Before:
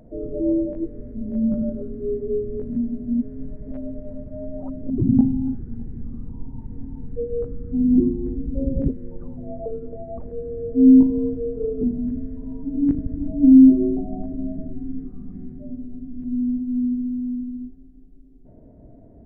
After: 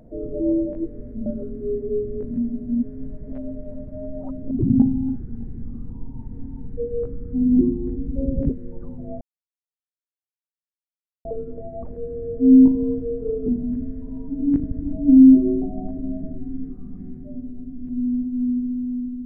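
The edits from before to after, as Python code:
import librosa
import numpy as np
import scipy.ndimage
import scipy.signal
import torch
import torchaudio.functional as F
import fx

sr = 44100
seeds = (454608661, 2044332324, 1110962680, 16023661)

y = fx.edit(x, sr, fx.cut(start_s=1.26, length_s=0.39),
    fx.insert_silence(at_s=9.6, length_s=2.04), tone=tone)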